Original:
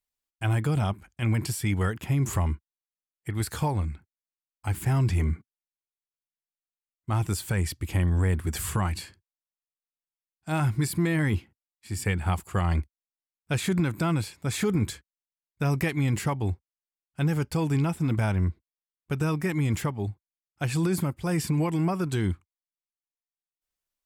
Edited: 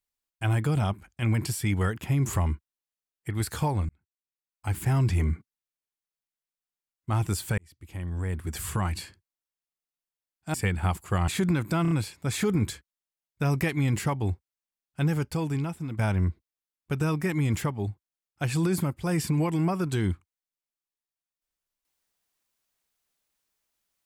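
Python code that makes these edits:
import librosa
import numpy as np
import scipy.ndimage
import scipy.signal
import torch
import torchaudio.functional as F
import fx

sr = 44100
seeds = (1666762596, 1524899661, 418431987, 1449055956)

y = fx.edit(x, sr, fx.fade_in_span(start_s=3.89, length_s=0.86),
    fx.fade_in_span(start_s=7.58, length_s=1.44),
    fx.cut(start_s=10.54, length_s=1.43),
    fx.cut(start_s=12.71, length_s=0.86),
    fx.stutter(start_s=14.11, slice_s=0.03, count=4),
    fx.fade_out_to(start_s=17.27, length_s=0.92, floor_db=-10.5), tone=tone)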